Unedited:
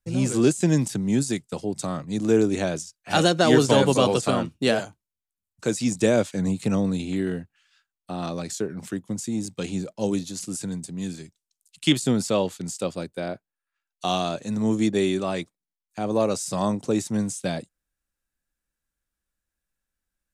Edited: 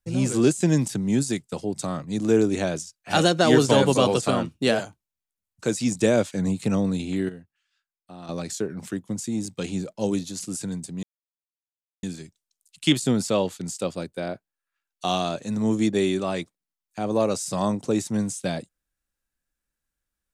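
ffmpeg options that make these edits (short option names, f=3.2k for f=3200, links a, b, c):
-filter_complex "[0:a]asplit=4[a][b][c][d];[a]atrim=end=7.292[e];[b]atrim=start=7.288:end=8.292,asetpts=PTS-STARTPTS,volume=-11dB[f];[c]atrim=start=8.288:end=11.03,asetpts=PTS-STARTPTS,afade=t=out:st=2.738:d=0.004:c=hsin,apad=pad_dur=1[g];[d]atrim=start=11.03,asetpts=PTS-STARTPTS,afade=t=in:d=0.004:c=hsin[h];[e][f]acrossfade=d=0.004:c1=hsin:c2=hsin[i];[g][h]concat=n=2:v=0:a=1[j];[i][j]acrossfade=d=0.004:c1=hsin:c2=hsin"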